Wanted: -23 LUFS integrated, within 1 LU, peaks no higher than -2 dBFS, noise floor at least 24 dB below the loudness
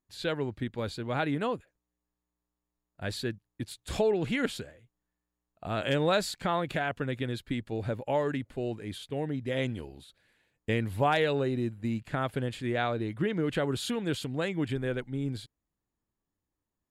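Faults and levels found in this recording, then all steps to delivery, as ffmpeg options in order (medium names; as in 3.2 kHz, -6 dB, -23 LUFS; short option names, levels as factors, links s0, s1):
loudness -31.5 LUFS; peak level -14.0 dBFS; loudness target -23.0 LUFS
-> -af "volume=2.66"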